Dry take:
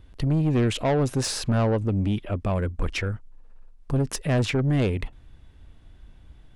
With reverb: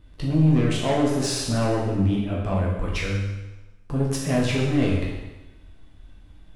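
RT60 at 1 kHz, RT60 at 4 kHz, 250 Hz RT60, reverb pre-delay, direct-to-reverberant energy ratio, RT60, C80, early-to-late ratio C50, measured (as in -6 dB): 1.1 s, 1.0 s, 1.0 s, 10 ms, -4.0 dB, 1.1 s, 4.0 dB, 2.0 dB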